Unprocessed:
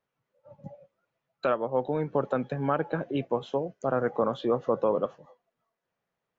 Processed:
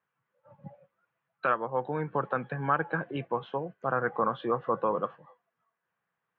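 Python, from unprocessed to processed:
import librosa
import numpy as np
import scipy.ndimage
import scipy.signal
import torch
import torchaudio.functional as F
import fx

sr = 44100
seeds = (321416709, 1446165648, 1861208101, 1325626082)

y = fx.cabinet(x, sr, low_hz=110.0, low_slope=12, high_hz=3100.0, hz=(260.0, 400.0, 600.0, 1100.0, 1600.0), db=(-8, -5, -7, 5, 7))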